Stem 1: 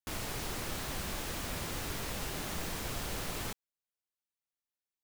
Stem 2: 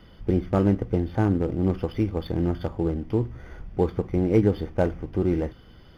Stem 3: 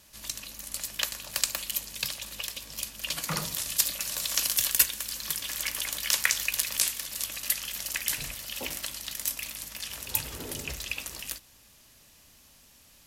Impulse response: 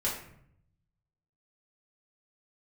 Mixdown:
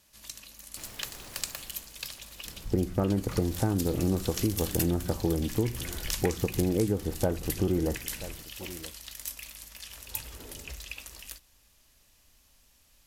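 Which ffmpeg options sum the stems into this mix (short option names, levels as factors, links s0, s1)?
-filter_complex "[0:a]adelay=700,volume=0.891,afade=t=out:st=1.43:d=0.48:silence=0.237137,afade=t=in:st=3.01:d=0.52:silence=0.354813,asplit=2[s0][s1];[s1]volume=0.224[s2];[1:a]lowpass=2000,adelay=2450,volume=1.19,asplit=2[s3][s4];[s4]volume=0.0794[s5];[2:a]asubboost=boost=3.5:cutoff=64,volume=0.447[s6];[s2][s5]amix=inputs=2:normalize=0,aecho=0:1:981:1[s7];[s0][s3][s6][s7]amix=inputs=4:normalize=0,acompressor=threshold=0.0708:ratio=6"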